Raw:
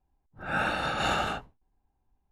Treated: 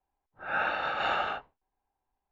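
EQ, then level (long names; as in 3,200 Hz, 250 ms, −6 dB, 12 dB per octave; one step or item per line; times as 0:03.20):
Butterworth low-pass 7,300 Hz 48 dB per octave
three-way crossover with the lows and the highs turned down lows −15 dB, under 420 Hz, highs −22 dB, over 3,600 Hz
0.0 dB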